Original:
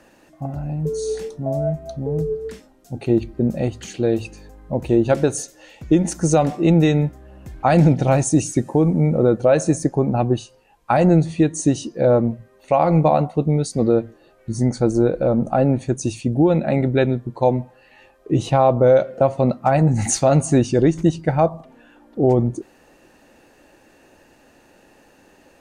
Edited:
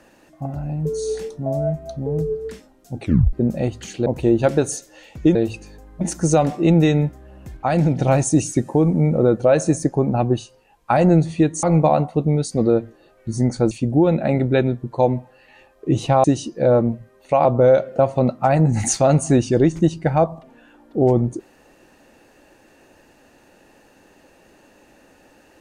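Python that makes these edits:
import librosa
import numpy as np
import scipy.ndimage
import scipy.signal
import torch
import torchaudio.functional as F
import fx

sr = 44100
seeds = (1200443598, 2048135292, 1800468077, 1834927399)

y = fx.edit(x, sr, fx.tape_stop(start_s=3.02, length_s=0.31),
    fx.move(start_s=4.06, length_s=0.66, to_s=6.01),
    fx.clip_gain(start_s=7.57, length_s=0.38, db=-4.0),
    fx.move(start_s=11.63, length_s=1.21, to_s=18.67),
    fx.cut(start_s=14.92, length_s=1.22), tone=tone)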